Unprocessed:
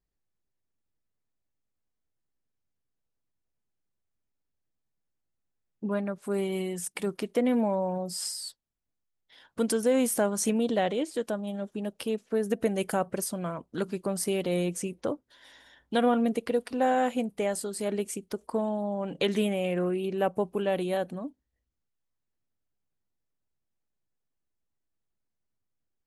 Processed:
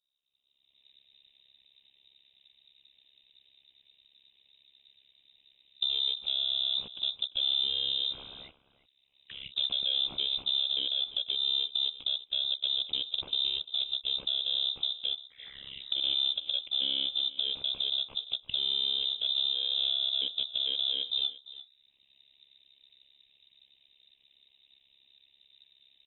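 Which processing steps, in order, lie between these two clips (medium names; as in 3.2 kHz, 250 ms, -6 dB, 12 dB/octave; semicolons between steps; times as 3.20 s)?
bit-reversed sample order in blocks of 16 samples; recorder AGC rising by 35 dB/s; high-pass 110 Hz 12 dB/octave; bass shelf 400 Hz +9 dB; compression 2:1, threshold -26 dBFS, peak gain reduction 10 dB; saturation -23.5 dBFS, distortion -14 dB; touch-sensitive phaser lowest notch 370 Hz, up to 2 kHz, full sweep at -33 dBFS; AM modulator 68 Hz, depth 100%; delay 346 ms -16.5 dB; frequency inversion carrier 3.8 kHz; trim +3 dB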